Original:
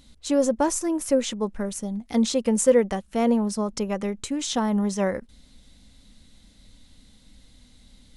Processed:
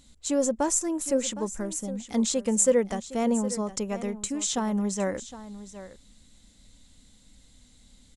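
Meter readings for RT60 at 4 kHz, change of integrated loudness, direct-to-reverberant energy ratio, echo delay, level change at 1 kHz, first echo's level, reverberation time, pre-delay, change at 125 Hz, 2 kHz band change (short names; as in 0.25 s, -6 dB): none, -2.5 dB, none, 0.762 s, -4.0 dB, -14.5 dB, none, none, n/a, -4.0 dB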